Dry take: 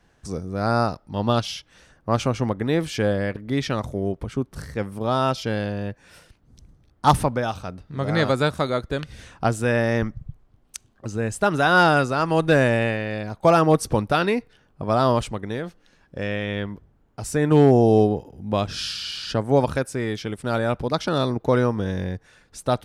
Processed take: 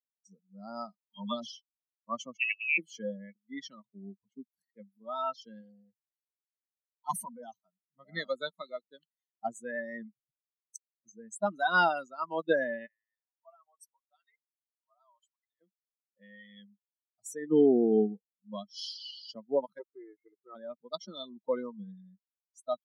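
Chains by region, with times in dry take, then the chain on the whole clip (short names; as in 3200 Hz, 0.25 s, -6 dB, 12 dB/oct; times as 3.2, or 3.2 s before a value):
1.05–1.52 dispersion lows, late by 50 ms, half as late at 670 Hz + three-band squash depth 40%
2.37–2.78 HPF 62 Hz + inverted band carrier 2800 Hz
5.6–7.56 ripple EQ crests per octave 1.9, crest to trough 6 dB + transient shaper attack -9 dB, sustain +3 dB
12.86–15.61 HPF 650 Hz + compressor 1.5:1, threshold -51 dBFS
19.79–20.55 rippled Chebyshev low-pass 2200 Hz, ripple 3 dB + comb 2.3 ms, depth 52% + Doppler distortion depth 0.27 ms
whole clip: per-bin expansion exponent 3; spectral noise reduction 9 dB; elliptic high-pass 200 Hz, stop band 60 dB; gain -3 dB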